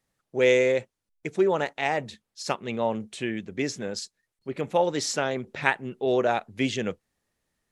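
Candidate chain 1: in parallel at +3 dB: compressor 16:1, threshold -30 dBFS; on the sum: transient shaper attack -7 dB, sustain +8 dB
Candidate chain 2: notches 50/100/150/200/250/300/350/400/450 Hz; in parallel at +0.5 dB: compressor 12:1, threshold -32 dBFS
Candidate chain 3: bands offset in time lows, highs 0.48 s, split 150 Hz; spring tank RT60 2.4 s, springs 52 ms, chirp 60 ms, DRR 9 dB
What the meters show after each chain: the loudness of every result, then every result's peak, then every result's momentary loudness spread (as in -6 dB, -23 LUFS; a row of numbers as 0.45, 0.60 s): -24.0, -25.0, -27.0 LUFS; -5.5, -2.5, -5.5 dBFS; 12, 11, 12 LU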